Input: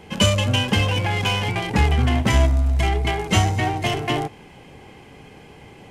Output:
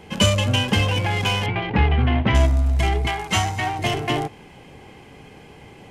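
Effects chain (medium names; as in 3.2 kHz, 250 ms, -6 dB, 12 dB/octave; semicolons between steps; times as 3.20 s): 1.46–2.35 s: low-pass 3.3 kHz 24 dB/octave; 3.07–3.79 s: resonant low shelf 670 Hz -6 dB, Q 1.5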